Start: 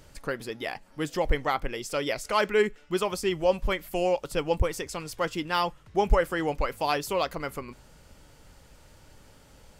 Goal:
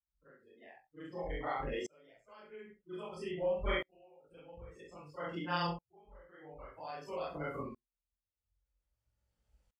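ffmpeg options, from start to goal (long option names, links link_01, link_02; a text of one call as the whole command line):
ffmpeg -i in.wav -af "afftfilt=real='re':imag='-im':win_size=4096:overlap=0.75,afftdn=noise_reduction=26:noise_floor=-39,highpass=50,adynamicequalizer=threshold=0.00224:dfrequency=3100:dqfactor=3.3:tfrequency=3100:tqfactor=3.3:attack=5:release=100:ratio=0.375:range=1.5:mode=cutabove:tftype=bell,acompressor=threshold=-31dB:ratio=8,flanger=delay=17.5:depth=6.6:speed=0.43,aecho=1:1:19|48|65:0.188|0.178|0.237,aeval=exprs='val(0)*pow(10,-35*if(lt(mod(-0.51*n/s,1),2*abs(-0.51)/1000),1-mod(-0.51*n/s,1)/(2*abs(-0.51)/1000),(mod(-0.51*n/s,1)-2*abs(-0.51)/1000)/(1-2*abs(-0.51)/1000))/20)':channel_layout=same,volume=7.5dB" out.wav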